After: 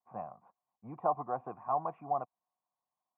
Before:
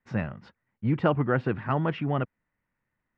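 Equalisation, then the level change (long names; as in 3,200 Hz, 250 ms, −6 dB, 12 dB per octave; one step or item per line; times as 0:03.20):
formant resonators in series a
band-pass filter 130–3,300 Hz
+6.5 dB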